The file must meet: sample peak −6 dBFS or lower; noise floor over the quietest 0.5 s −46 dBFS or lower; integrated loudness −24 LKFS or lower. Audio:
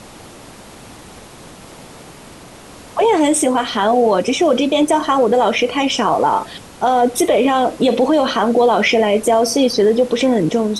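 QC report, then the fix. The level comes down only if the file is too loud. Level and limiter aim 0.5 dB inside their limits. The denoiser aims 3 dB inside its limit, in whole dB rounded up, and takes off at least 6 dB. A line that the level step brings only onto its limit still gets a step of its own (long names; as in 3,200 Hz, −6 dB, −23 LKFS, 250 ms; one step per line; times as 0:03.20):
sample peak −5.0 dBFS: out of spec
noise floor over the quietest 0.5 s −38 dBFS: out of spec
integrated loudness −15.0 LKFS: out of spec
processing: level −9.5 dB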